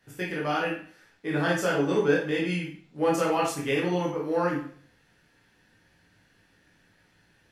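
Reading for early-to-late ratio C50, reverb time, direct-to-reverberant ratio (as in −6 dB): 4.5 dB, 0.50 s, −4.0 dB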